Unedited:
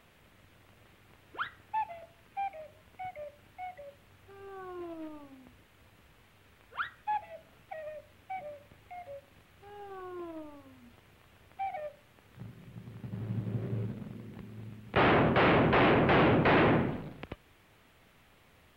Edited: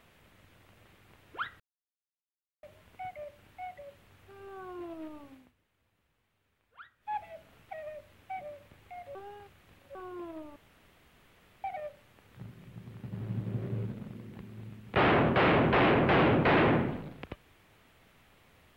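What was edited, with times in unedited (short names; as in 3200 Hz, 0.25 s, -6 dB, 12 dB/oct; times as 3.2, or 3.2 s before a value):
1.6–2.63 mute
5.33–7.2 dip -15.5 dB, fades 0.20 s
9.15–9.95 reverse
10.56–11.64 room tone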